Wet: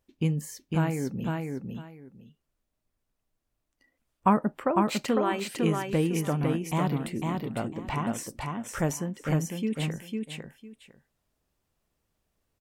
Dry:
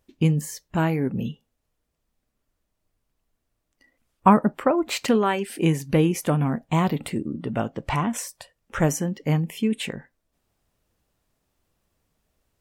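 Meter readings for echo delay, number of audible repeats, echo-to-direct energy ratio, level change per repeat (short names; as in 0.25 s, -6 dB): 0.503 s, 2, -3.5 dB, -14.0 dB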